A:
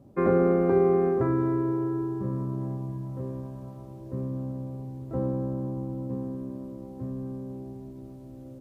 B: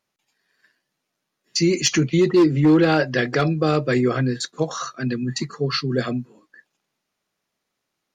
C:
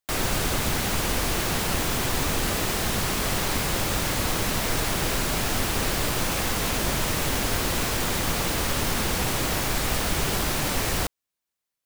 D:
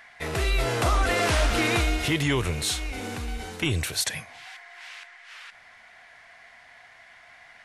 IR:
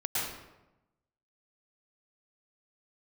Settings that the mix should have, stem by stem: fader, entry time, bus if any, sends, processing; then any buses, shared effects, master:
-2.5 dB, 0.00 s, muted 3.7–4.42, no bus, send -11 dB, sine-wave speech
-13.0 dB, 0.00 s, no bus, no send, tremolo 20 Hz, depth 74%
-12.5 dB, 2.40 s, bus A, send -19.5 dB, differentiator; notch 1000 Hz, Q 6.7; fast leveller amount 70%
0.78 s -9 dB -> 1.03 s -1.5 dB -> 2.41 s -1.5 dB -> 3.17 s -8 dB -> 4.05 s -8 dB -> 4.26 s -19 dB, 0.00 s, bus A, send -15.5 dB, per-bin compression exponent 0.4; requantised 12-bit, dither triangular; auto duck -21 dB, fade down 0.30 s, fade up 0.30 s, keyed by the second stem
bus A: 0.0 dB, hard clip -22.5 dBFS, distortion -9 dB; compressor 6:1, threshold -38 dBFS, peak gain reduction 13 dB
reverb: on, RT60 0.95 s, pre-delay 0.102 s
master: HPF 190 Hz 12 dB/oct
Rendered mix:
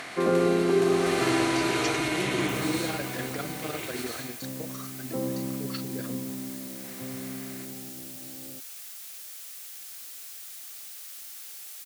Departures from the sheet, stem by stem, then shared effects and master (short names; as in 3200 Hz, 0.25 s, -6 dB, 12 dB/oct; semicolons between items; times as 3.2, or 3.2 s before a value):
stem A: missing sine-wave speech; stem C: send off